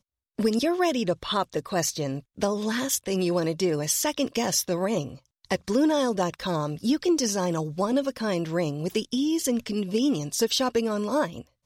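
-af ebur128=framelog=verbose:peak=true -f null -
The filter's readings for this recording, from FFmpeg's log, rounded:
Integrated loudness:
  I:         -26.1 LUFS
  Threshold: -36.2 LUFS
Loudness range:
  LRA:         1.0 LU
  Threshold: -46.2 LUFS
  LRA low:   -26.6 LUFS
  LRA high:  -25.7 LUFS
True peak:
  Peak:      -10.4 dBFS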